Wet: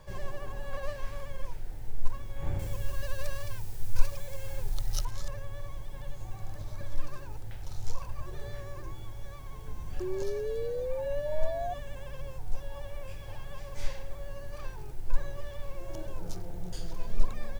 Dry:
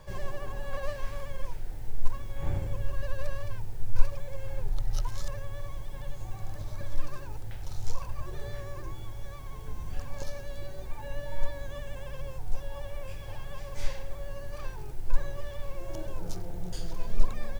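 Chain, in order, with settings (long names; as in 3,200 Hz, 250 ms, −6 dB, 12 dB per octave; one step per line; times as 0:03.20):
0:02.59–0:05.05: high-shelf EQ 2,900 Hz +11.5 dB
0:10.00–0:11.74: sound drawn into the spectrogram rise 360–720 Hz −32 dBFS
level −2 dB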